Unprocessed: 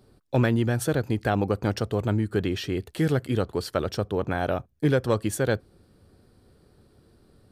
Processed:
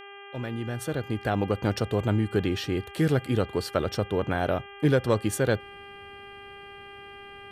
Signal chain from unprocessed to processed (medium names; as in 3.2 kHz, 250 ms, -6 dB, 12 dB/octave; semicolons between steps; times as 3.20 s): fade-in on the opening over 1.76 s; mains buzz 400 Hz, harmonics 8, -45 dBFS -2 dB/octave